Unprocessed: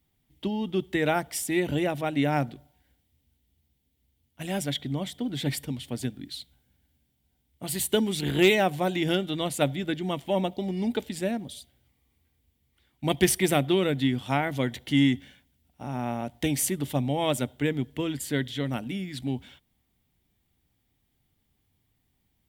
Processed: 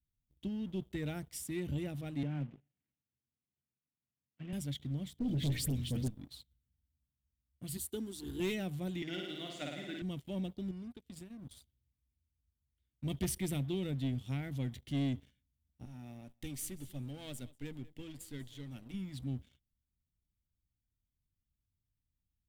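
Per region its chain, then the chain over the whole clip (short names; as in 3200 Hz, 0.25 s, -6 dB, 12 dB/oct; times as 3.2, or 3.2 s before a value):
2.23–4.53 CVSD 16 kbps + HPF 130 Hz 24 dB/oct
5.19–6.08 notches 60/120/180/240/300/360/420/480/540/600 Hz + dispersion highs, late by 73 ms, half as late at 2100 Hz + sample leveller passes 3
7.77–8.4 HPF 59 Hz 6 dB/oct + fixed phaser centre 600 Hz, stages 6
9.02–10.02 speaker cabinet 330–6200 Hz, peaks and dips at 480 Hz -8 dB, 720 Hz +5 dB, 1400 Hz +5 dB, 2000 Hz +7 dB + flutter echo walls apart 9.3 m, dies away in 1.1 s
10.71–11.51 compressor 8:1, threshold -34 dBFS + band shelf 740 Hz -8 dB 1.1 oct + gate -42 dBFS, range -9 dB
15.85–18.94 half-wave gain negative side -7 dB + low shelf 260 Hz -8.5 dB + feedback echo 0.192 s, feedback 17%, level -20 dB
whole clip: passive tone stack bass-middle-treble 10-0-1; sample leveller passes 2; gain +1 dB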